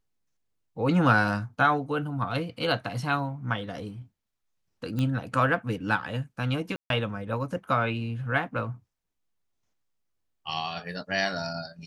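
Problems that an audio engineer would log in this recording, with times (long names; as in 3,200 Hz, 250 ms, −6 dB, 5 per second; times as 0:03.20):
0:04.99: click −18 dBFS
0:06.76–0:06.90: drop-out 142 ms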